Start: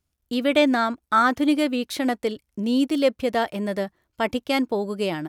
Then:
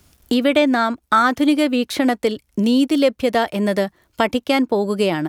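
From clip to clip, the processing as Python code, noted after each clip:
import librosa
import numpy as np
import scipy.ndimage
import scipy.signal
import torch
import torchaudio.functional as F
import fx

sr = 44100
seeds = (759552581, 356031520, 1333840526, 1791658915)

y = fx.band_squash(x, sr, depth_pct=70)
y = y * 10.0 ** (4.5 / 20.0)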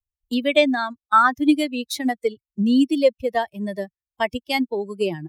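y = fx.bin_expand(x, sr, power=2.0)
y = fx.band_widen(y, sr, depth_pct=70)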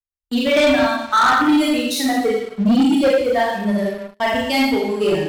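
y = fx.rev_schroeder(x, sr, rt60_s=0.79, comb_ms=30, drr_db=-4.0)
y = fx.leveller(y, sr, passes=3)
y = y * 10.0 ** (-9.0 / 20.0)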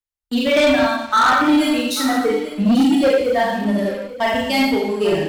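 y = x + 10.0 ** (-15.0 / 20.0) * np.pad(x, (int(843 * sr / 1000.0), 0))[:len(x)]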